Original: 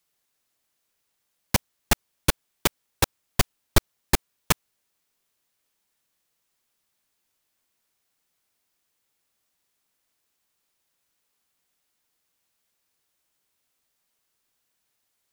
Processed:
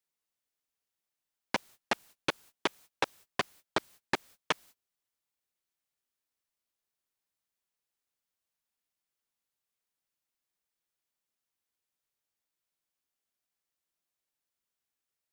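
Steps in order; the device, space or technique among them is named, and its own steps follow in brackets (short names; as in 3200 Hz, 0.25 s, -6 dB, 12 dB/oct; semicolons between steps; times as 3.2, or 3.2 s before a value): baby monitor (BPF 330–3400 Hz; compressor 6:1, threshold -28 dBFS, peak gain reduction 9.5 dB; white noise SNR 18 dB; gate -53 dBFS, range -28 dB); gain +1.5 dB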